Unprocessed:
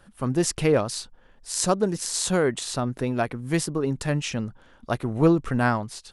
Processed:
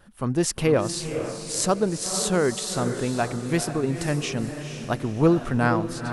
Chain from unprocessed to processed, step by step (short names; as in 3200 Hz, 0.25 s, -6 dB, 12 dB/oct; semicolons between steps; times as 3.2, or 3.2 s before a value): wow and flutter 35 cents; diffused feedback echo 0.473 s, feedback 43%, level -8 dB